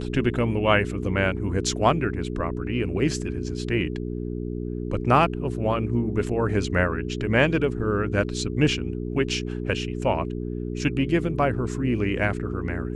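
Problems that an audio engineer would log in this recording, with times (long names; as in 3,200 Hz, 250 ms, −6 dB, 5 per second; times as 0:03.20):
mains hum 60 Hz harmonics 7 −30 dBFS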